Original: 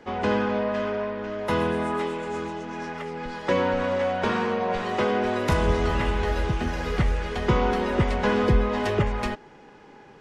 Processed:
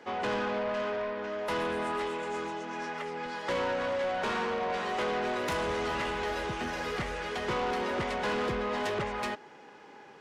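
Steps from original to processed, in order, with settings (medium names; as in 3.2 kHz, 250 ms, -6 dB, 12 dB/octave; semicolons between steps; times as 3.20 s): high-pass 440 Hz 6 dB/octave; saturation -27 dBFS, distortion -11 dB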